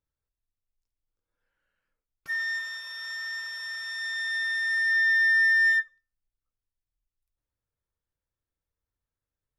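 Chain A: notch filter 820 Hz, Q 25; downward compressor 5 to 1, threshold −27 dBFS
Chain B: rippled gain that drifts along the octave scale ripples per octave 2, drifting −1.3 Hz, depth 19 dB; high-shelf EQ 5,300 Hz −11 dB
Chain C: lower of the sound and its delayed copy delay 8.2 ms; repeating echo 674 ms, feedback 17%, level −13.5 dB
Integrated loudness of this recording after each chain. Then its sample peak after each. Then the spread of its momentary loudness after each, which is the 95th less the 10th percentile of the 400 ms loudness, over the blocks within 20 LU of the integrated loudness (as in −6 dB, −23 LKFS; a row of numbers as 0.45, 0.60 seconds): −29.0, −20.5, −26.0 LKFS; −23.5, −10.0, −15.0 dBFS; 9, 21, 16 LU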